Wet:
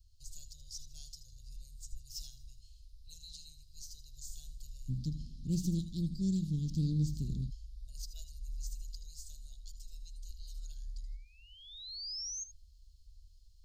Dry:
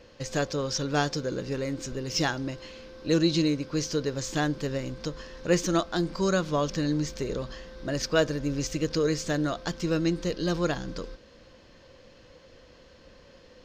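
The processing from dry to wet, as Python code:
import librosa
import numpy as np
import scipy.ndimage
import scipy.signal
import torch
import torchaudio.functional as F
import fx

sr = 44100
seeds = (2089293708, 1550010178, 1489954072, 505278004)

y = fx.peak_eq(x, sr, hz=5400.0, db=-4.0, octaves=0.28)
y = fx.hum_notches(y, sr, base_hz=60, count=3)
y = fx.echo_feedback(y, sr, ms=79, feedback_pct=51, wet_db=-16.5)
y = fx.spec_paint(y, sr, seeds[0], shape='rise', start_s=10.55, length_s=1.89, low_hz=1300.0, high_hz=6600.0, level_db=-30.0)
y = fx.graphic_eq_15(y, sr, hz=(100, 630, 6300), db=(5, 9, -12))
y = y + 10.0 ** (-13.5 / 20.0) * np.pad(y, (int(78 * sr / 1000.0), 0))[:len(y)]
y = fx.rider(y, sr, range_db=4, speed_s=2.0)
y = fx.cheby2_bandstop(y, sr, low_hz=fx.steps((0.0, 190.0), (4.88, 530.0), (7.49, 180.0)), high_hz=2000.0, order=4, stop_db=60)
y = fx.doppler_dist(y, sr, depth_ms=0.17)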